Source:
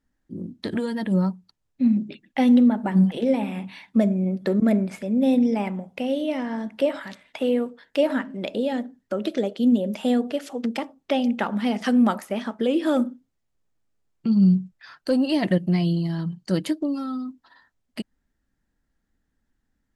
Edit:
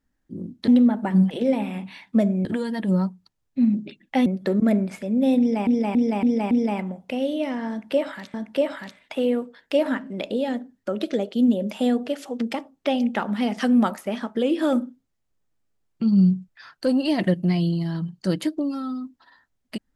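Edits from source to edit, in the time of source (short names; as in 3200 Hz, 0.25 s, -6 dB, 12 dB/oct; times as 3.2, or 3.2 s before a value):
2.49–4.26 move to 0.68
5.39–5.67 loop, 5 plays
6.58–7.22 loop, 2 plays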